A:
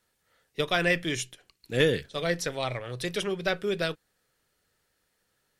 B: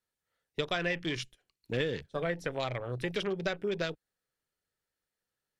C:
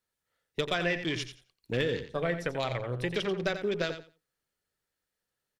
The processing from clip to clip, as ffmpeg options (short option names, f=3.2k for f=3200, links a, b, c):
-af "afwtdn=0.0126,acompressor=threshold=-31dB:ratio=4,volume=1.5dB"
-af "asoftclip=type=hard:threshold=-19.5dB,aecho=1:1:88|176|264:0.316|0.0601|0.0114,volume=2dB"